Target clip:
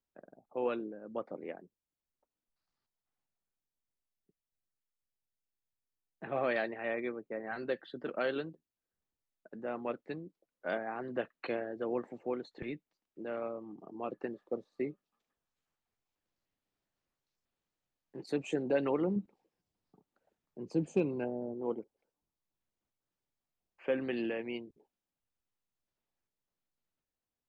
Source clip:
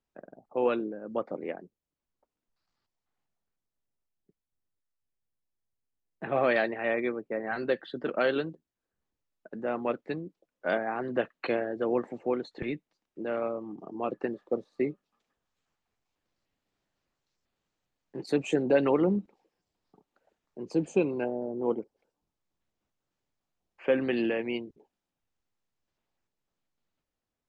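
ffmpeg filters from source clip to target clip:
-filter_complex "[0:a]asettb=1/sr,asplit=3[s0][s1][s2];[s0]atrim=end=19.164[s3];[s1]atrim=start=19.16:end=21.54,asetpts=PTS-STARTPTS,afade=t=in:d=0.004:c=qsin,afade=t=out:st=2.376:d=0.004:c=qsin,equalizer=f=130:w=0.62:g=6.5[s4];[s2]atrim=start=21.536[s5];[s3][s4]acrossfade=d=0.004:c1=hsin:c2=qsin[s6];[s6][s5]acrossfade=d=0.004:c1=qsin:c2=hsin,asoftclip=type=hard:threshold=0.251,volume=0.447"

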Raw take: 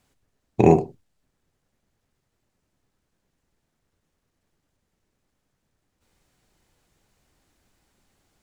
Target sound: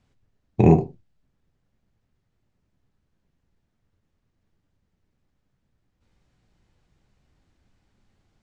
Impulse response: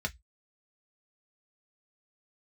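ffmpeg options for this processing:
-af "flanger=delay=9:depth=8.8:regen=-61:speed=0.24:shape=sinusoidal,lowpass=6100,bass=f=250:g=8,treble=f=4000:g=-2,volume=1.12"

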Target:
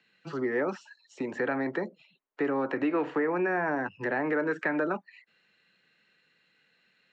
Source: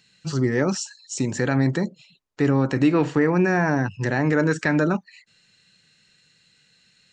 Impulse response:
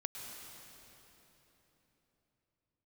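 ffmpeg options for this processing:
-filter_complex "[0:a]acrossover=split=230 2900:gain=0.1 1 0.0631[s0][s1][s2];[s0][s1][s2]amix=inputs=3:normalize=0,acrossover=split=310|3300[s3][s4][s5];[s3]acompressor=threshold=0.0126:ratio=4[s6];[s4]acompressor=threshold=0.0631:ratio=4[s7];[s5]acompressor=threshold=0.00158:ratio=4[s8];[s6][s7][s8]amix=inputs=3:normalize=0,acrossover=split=270|2900[s9][s10][s11];[s11]volume=59.6,asoftclip=hard,volume=0.0168[s12];[s9][s10][s12]amix=inputs=3:normalize=0,volume=0.841"

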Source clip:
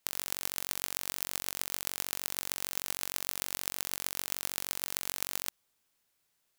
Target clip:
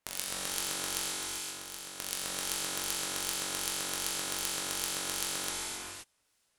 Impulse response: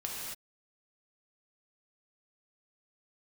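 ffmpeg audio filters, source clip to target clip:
-filter_complex "[0:a]asettb=1/sr,asplit=3[s0][s1][s2];[s0]atrim=end=1.094[s3];[s1]atrim=start=1.09:end=1.99,asetpts=PTS-STARTPTS,afade=t=in:d=0.004:c=qsin,afade=t=out:st=0.896:d=0.004:c=qsin,acompressor=threshold=0.0158:ratio=6[s4];[s2]atrim=start=1.986[s5];[s3][s4]acrossfade=d=0.004:c1=hsin:c2=qsin[s6];[s6][s5]acrossfade=d=0.004:c1=qsin:c2=hsin,acrossover=split=2100[s7][s8];[s7]aeval=exprs='val(0)*(1-0.7/2+0.7/2*cos(2*PI*2.6*n/s))':c=same[s9];[s8]aeval=exprs='val(0)*(1-0.7/2-0.7/2*cos(2*PI*2.6*n/s))':c=same[s10];[s9][s10]amix=inputs=2:normalize=0[s11];[1:a]atrim=start_sample=2205,asetrate=23373,aresample=44100[s12];[s11][s12]afir=irnorm=-1:irlink=0"

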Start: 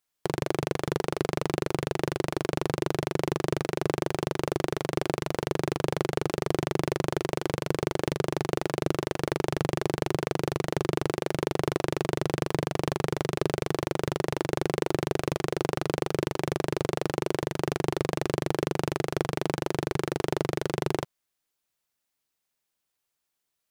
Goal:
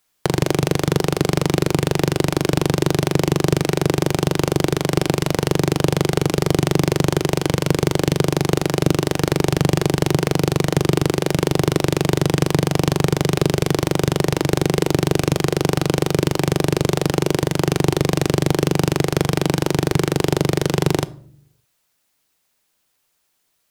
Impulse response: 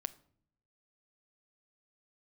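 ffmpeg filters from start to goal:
-filter_complex "[0:a]acrossover=split=290|3000[s0][s1][s2];[s1]acompressor=threshold=0.0178:ratio=3[s3];[s0][s3][s2]amix=inputs=3:normalize=0,asplit=2[s4][s5];[1:a]atrim=start_sample=2205[s6];[s5][s6]afir=irnorm=-1:irlink=0,volume=4.47[s7];[s4][s7]amix=inputs=2:normalize=0"

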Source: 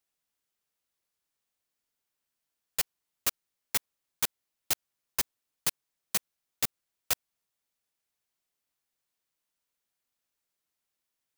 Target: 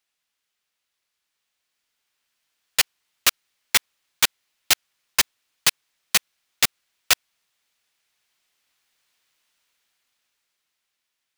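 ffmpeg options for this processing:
-af "equalizer=f=2700:w=0.38:g=11,dynaudnorm=f=240:g=17:m=5.62,volume=0.891"

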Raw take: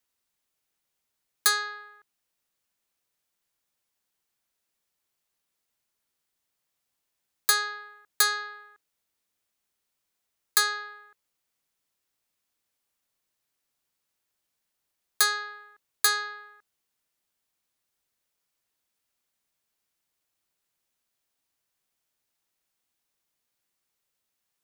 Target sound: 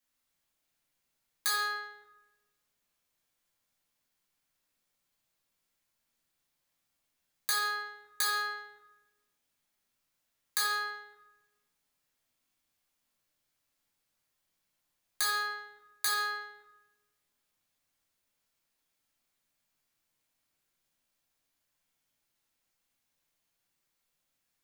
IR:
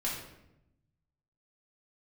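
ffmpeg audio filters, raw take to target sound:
-filter_complex "[0:a]acompressor=threshold=0.0501:ratio=6[s0];[1:a]atrim=start_sample=2205[s1];[s0][s1]afir=irnorm=-1:irlink=0,volume=0.668"

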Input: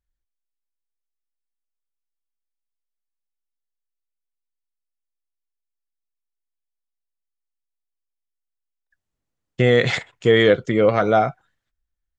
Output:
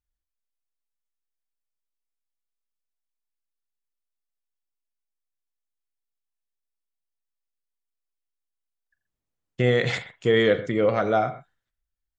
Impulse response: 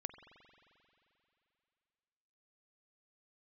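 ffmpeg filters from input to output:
-filter_complex "[1:a]atrim=start_sample=2205,atrim=end_sample=6615,asetrate=48510,aresample=44100[s0];[0:a][s0]afir=irnorm=-1:irlink=0,volume=0.891"

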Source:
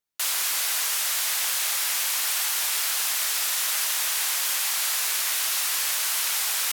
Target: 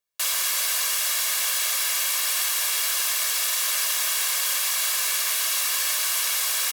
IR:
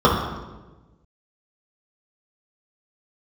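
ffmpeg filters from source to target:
-af "lowshelf=f=120:g=-7.5,aecho=1:1:1.8:0.58"

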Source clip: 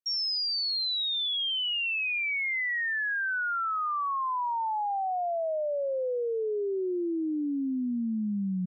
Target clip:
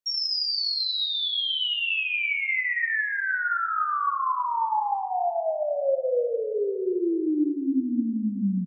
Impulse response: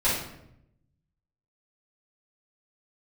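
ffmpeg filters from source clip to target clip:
-filter_complex "[0:a]asplit=2[s0][s1];[s1]adelay=583.1,volume=0.158,highshelf=f=4000:g=-13.1[s2];[s0][s2]amix=inputs=2:normalize=0,asplit=2[s3][s4];[1:a]atrim=start_sample=2205,asetrate=23373,aresample=44100[s5];[s4][s5]afir=irnorm=-1:irlink=0,volume=0.126[s6];[s3][s6]amix=inputs=2:normalize=0"

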